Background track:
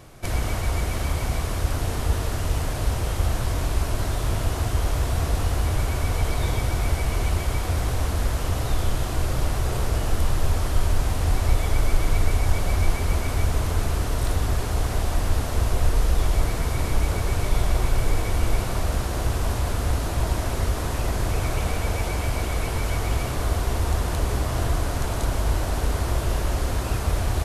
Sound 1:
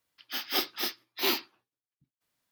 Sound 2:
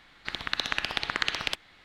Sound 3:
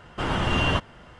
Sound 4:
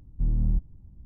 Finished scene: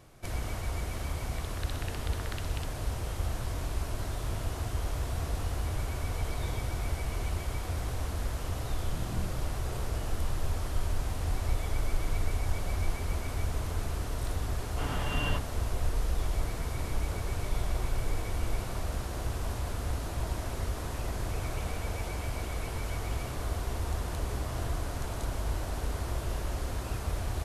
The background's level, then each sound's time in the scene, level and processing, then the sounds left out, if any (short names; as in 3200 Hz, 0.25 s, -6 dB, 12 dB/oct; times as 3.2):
background track -9.5 dB
1.1 add 2 -17 dB
8.72 add 4 -5.5 dB + HPF 120 Hz
14.59 add 3 -12 dB + comb 6.9 ms, depth 54%
not used: 1